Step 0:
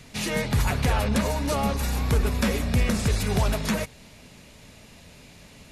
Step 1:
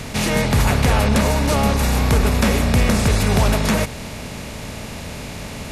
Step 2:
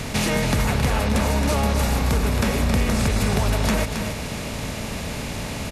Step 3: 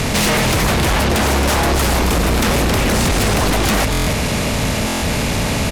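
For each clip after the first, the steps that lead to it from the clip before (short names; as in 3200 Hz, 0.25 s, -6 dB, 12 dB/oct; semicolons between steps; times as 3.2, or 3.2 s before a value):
per-bin compression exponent 0.6; gain +4 dB
compressor, threshold -19 dBFS, peak gain reduction 7.5 dB; echo 0.27 s -7 dB; gain +1 dB
sine folder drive 12 dB, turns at -8.5 dBFS; stuck buffer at 3.91/4.86, samples 1024, times 6; gain -3.5 dB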